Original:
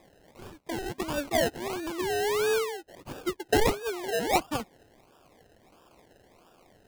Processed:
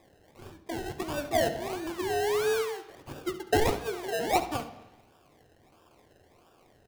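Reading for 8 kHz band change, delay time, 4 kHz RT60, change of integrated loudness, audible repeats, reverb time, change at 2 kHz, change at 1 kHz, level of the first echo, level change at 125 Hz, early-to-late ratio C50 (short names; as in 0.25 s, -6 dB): -2.5 dB, 70 ms, 1.2 s, -1.0 dB, 1, 1.0 s, -2.0 dB, 0.0 dB, -13.5 dB, +0.5 dB, 10.5 dB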